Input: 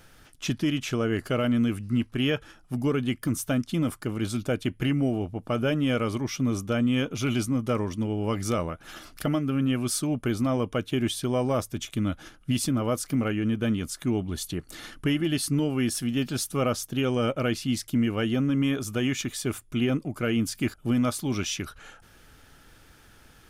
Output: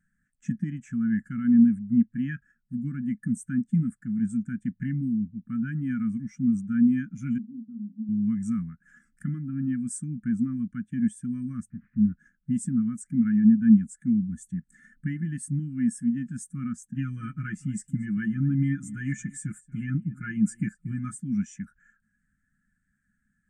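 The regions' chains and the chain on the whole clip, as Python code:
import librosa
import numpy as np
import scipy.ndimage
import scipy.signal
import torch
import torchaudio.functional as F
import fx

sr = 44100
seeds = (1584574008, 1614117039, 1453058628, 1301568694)

y = fx.chain(x, sr, fx.ladder_bandpass(hz=280.0, resonance_pct=35),
    fx.doubler(ms=43.0, db=-9.0), at=(7.38, 8.09))
y = fx.chain(y, sr, fx.delta_mod(bps=16000, step_db=-47.5),
    fx.peak_eq(hz=1100.0, db=5.5, octaves=0.83), at=(11.7, 12.12))
y = fx.chain(y, sr, fx.comb(ms=6.3, depth=0.93),
    fx.echo_single(ms=232, db=-16.5), at=(16.94, 21.15))
y = fx.curve_eq(y, sr, hz=(120.0, 210.0, 460.0, 740.0, 1700.0, 2800.0, 4200.0, 7900.0, 12000.0), db=(0, 14, -27, -26, 10, -8, -14, 11, -5))
y = fx.spectral_expand(y, sr, expansion=1.5)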